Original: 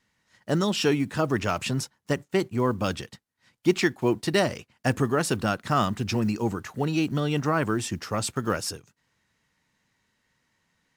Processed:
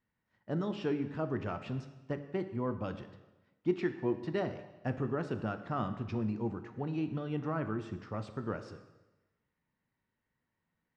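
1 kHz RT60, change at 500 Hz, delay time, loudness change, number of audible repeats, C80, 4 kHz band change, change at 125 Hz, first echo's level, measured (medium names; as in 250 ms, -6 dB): 1.1 s, -9.5 dB, no echo, -10.0 dB, no echo, 12.5 dB, -21.0 dB, -9.0 dB, no echo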